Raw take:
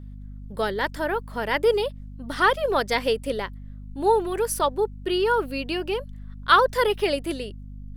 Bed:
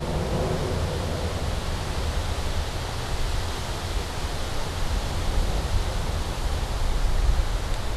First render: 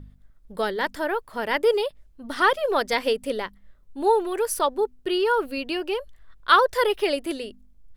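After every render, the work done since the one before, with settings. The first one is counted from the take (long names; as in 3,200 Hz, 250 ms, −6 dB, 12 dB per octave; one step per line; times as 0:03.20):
hum removal 50 Hz, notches 5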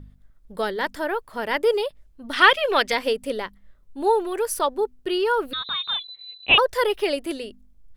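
0:02.33–0:02.92: parametric band 2,600 Hz +14 dB 1.3 octaves
0:05.53–0:06.58: voice inversion scrambler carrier 4,000 Hz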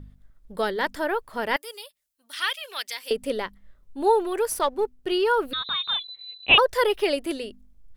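0:01.56–0:03.11: first difference
0:04.50–0:05.12: gain on one half-wave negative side −3 dB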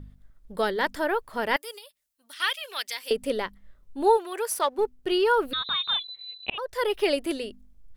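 0:01.78–0:02.40: downward compressor, threshold −41 dBFS
0:04.16–0:04.77: high-pass filter 1,300 Hz → 340 Hz 6 dB per octave
0:06.50–0:07.08: fade in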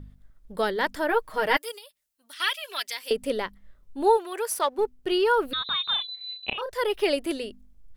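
0:01.08–0:01.72: comb filter 6.4 ms, depth 88%
0:02.38–0:02.86: comb filter 3 ms, depth 57%
0:05.95–0:06.71: double-tracking delay 32 ms −5 dB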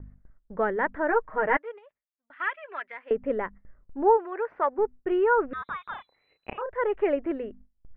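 noise gate with hold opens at −42 dBFS
Butterworth low-pass 2,000 Hz 36 dB per octave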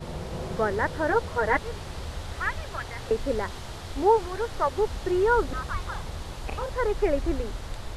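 mix in bed −8.5 dB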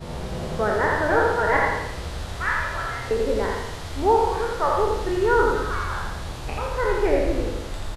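peak hold with a decay on every bin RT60 0.68 s
repeating echo 84 ms, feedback 48%, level −3.5 dB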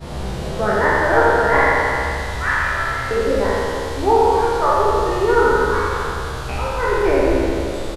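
peak hold with a decay on every bin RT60 2.79 s
double-tracking delay 15 ms −4 dB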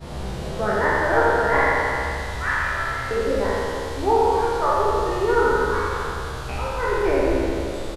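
level −4 dB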